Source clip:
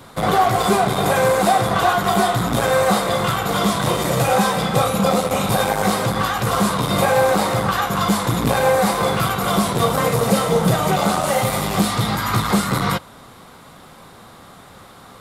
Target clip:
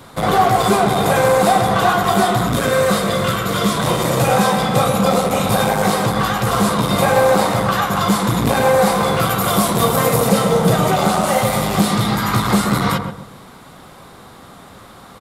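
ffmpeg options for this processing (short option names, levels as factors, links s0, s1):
-filter_complex "[0:a]asettb=1/sr,asplit=3[s0][s1][s2];[s0]atrim=end=9.294[s3];[s1]atrim=start=9.29:end=10.29,asetpts=PTS-STARTPTS,afade=t=in:d=0.004:c=qsin,afade=t=out:st=0.996:d=0.004:c=qsin,highshelf=f=10000:g=10.5[s4];[s2]atrim=start=10.286[s5];[s3][s4]acrossfade=d=0.004:c1=hsin:c2=qsin[s6];[s6][s5]acrossfade=d=0.004:c1=qsin:c2=hsin,aeval=exprs='0.708*(cos(1*acos(clip(val(0)/0.708,-1,1)))-cos(1*PI/2))+0.0112*(cos(6*acos(clip(val(0)/0.708,-1,1)))-cos(6*PI/2))+0.00708*(cos(8*acos(clip(val(0)/0.708,-1,1)))-cos(8*PI/2))':c=same,asettb=1/sr,asplit=3[s7][s8][s9];[s7]atrim=end=2.474[s10];[s8]atrim=start=2.47:end=3.76,asetpts=PTS-STARTPTS,afade=t=in:d=0.004:c=qsin,afade=t=out:st=1.286:d=0.004:c=qsin,equalizer=f=810:w=4.1:g=-12[s11];[s9]atrim=start=3.756[s12];[s10][s11]acrossfade=d=0.004:c1=hsin:c2=qsin[s13];[s13][s12]acrossfade=d=0.004:c1=qsin:c2=hsin,asplit=2[s14][s15];[s15]adelay=130,lowpass=f=890:p=1,volume=0.596,asplit=2[s16][s17];[s17]adelay=130,lowpass=f=890:p=1,volume=0.39,asplit=2[s18][s19];[s19]adelay=130,lowpass=f=890:p=1,volume=0.39,asplit=2[s20][s21];[s21]adelay=130,lowpass=f=890:p=1,volume=0.39,asplit=2[s22][s23];[s23]adelay=130,lowpass=f=890:p=1,volume=0.39[s24];[s16][s18][s20][s22][s24]amix=inputs=5:normalize=0[s25];[s14][s25]amix=inputs=2:normalize=0,volume=1.19"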